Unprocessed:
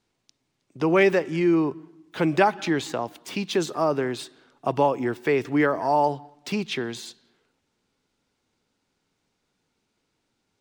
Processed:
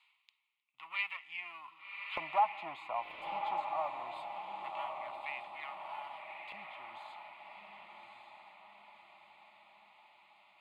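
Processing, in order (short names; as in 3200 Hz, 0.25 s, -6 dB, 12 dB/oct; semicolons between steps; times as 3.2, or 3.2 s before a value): one diode to ground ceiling -23.5 dBFS; Doppler pass-by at 2.89, 7 m/s, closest 5.1 m; graphic EQ 125/250/500/1000/8000 Hz -8/-11/-12/+10/-5 dB; in parallel at -10.5 dB: short-mantissa float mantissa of 2-bit; on the sum: HPF 91 Hz; bell 9200 Hz +8.5 dB 2.7 oct; fixed phaser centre 1600 Hz, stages 6; LFO band-pass square 0.23 Hz 590–2300 Hz; reverse; upward compressor, threshold -46 dBFS; reverse; diffused feedback echo 1.146 s, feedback 51%, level -4 dB; gain -1 dB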